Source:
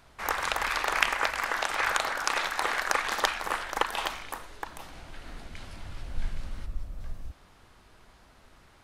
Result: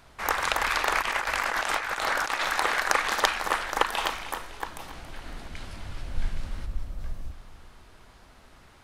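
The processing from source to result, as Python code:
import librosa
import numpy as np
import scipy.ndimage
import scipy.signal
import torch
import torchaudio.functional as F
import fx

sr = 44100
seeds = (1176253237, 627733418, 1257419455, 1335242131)

p1 = fx.over_compress(x, sr, threshold_db=-31.0, ratio=-0.5, at=(1.02, 2.59))
p2 = p1 + fx.echo_feedback(p1, sr, ms=279, feedback_pct=49, wet_db=-14.0, dry=0)
y = p2 * 10.0 ** (3.0 / 20.0)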